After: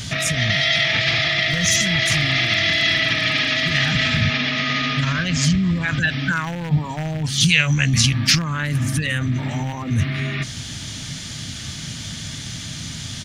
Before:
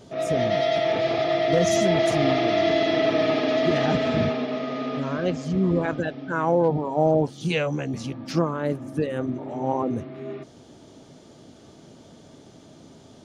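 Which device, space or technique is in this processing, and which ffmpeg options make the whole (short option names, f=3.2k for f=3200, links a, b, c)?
loud club master: -af "acompressor=threshold=-24dB:ratio=2,asoftclip=type=hard:threshold=-16.5dB,alimiter=level_in=26.5dB:limit=-1dB:release=50:level=0:latency=1,firequalizer=gain_entry='entry(110,0);entry(380,-26);entry(1800,3)':delay=0.05:min_phase=1,volume=-3.5dB"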